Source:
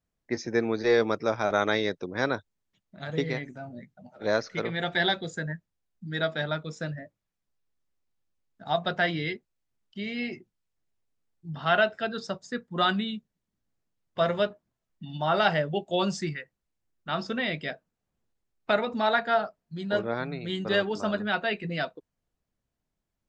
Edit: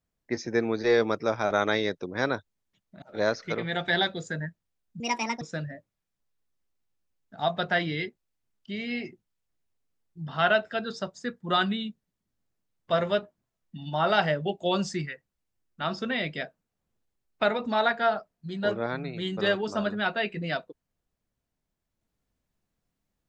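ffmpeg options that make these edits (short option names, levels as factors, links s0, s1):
-filter_complex "[0:a]asplit=4[s0][s1][s2][s3];[s0]atrim=end=3.022[s4];[s1]atrim=start=4.088:end=6.074[s5];[s2]atrim=start=6.07:end=6.69,asetpts=PTS-STARTPTS,asetrate=66150,aresample=44100[s6];[s3]atrim=start=6.686[s7];[s4][s5]acrossfade=d=0.004:c1=hsin:c2=hsin[s8];[s8][s6]acrossfade=d=0.004:c1=hsin:c2=hsin[s9];[s9][s7]acrossfade=d=0.004:c1=hsin:c2=hsin"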